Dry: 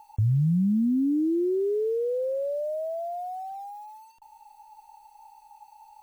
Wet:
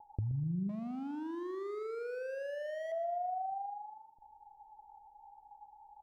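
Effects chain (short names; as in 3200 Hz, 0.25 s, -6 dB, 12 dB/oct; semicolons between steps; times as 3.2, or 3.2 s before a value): steep low-pass 820 Hz 72 dB/oct; compressor 8:1, threshold -34 dBFS, peak gain reduction 13 dB; 0.69–2.92 hard clip -39 dBFS, distortion -9 dB; feedback echo 0.124 s, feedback 41%, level -13 dB; Doppler distortion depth 0.23 ms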